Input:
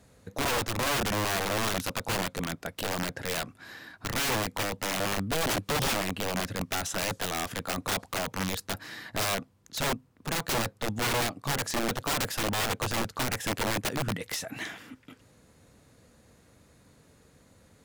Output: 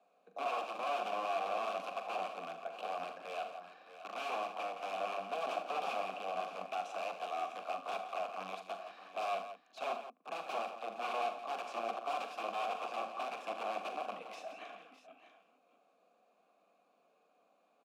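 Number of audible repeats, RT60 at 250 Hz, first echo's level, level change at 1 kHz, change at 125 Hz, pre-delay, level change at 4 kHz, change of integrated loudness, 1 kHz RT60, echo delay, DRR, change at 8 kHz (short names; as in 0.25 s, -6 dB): 5, none, -9.5 dB, -3.0 dB, under -30 dB, none, -16.0 dB, -9.5 dB, none, 42 ms, none, -26.0 dB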